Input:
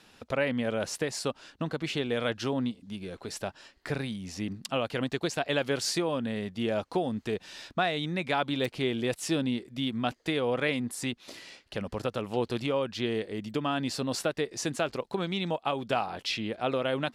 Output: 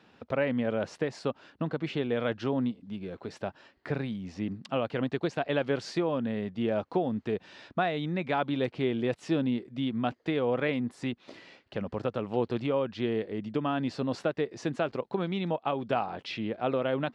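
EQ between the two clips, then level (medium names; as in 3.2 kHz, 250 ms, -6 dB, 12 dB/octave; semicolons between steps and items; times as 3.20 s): high-pass 92 Hz; tape spacing loss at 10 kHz 26 dB; +2.0 dB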